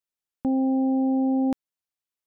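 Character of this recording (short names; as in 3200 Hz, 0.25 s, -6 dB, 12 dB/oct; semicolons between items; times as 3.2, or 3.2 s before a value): noise floor -91 dBFS; spectral tilt +1.0 dB/oct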